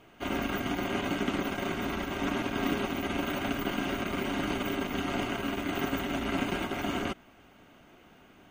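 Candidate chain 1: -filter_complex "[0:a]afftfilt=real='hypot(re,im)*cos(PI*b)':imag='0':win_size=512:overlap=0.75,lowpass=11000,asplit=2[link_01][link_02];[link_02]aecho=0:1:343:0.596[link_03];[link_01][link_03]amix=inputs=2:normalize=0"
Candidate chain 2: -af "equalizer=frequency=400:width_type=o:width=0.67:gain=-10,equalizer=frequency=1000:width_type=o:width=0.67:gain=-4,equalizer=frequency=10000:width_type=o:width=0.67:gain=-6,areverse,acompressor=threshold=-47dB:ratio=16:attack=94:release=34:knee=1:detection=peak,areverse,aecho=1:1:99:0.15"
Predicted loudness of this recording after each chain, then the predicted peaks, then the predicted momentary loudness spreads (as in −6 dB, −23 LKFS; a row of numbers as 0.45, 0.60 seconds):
−33.5, −41.5 LKFS; −17.5, −26.5 dBFS; 3, 17 LU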